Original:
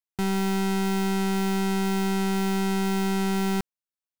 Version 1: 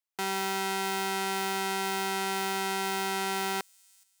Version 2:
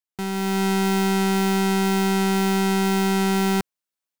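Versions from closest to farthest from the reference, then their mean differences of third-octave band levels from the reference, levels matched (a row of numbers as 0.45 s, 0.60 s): 2, 1; 1.5 dB, 6.5 dB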